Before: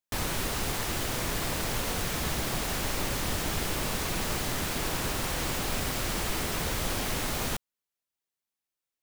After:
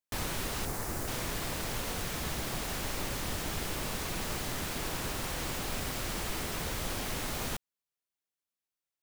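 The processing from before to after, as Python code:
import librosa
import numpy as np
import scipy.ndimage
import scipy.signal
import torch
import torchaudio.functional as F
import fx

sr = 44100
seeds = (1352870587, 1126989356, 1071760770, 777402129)

y = fx.peak_eq(x, sr, hz=3200.0, db=-11.0, octaves=1.2, at=(0.65, 1.08))
y = fx.rider(y, sr, range_db=10, speed_s=0.5)
y = y * librosa.db_to_amplitude(-4.5)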